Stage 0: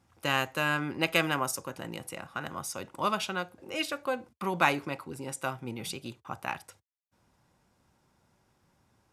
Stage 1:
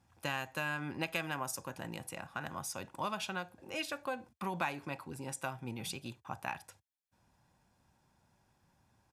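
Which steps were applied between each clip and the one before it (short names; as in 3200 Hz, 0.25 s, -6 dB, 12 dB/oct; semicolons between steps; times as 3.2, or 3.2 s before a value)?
comb 1.2 ms, depth 31%; compressor 3:1, threshold -30 dBFS, peak gain reduction 9.5 dB; gain -3.5 dB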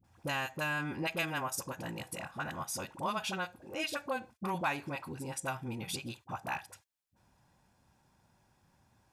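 dispersion highs, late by 43 ms, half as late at 660 Hz; gain +2.5 dB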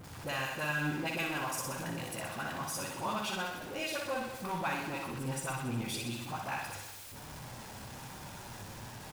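zero-crossing step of -38.5 dBFS; flange 1.1 Hz, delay 6.3 ms, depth 3.4 ms, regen +51%; on a send: reverse bouncing-ball echo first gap 60 ms, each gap 1.1×, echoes 5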